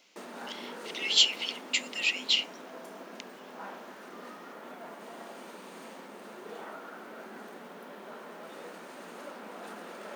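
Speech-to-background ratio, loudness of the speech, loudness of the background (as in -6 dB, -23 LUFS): 18.5 dB, -26.5 LUFS, -45.0 LUFS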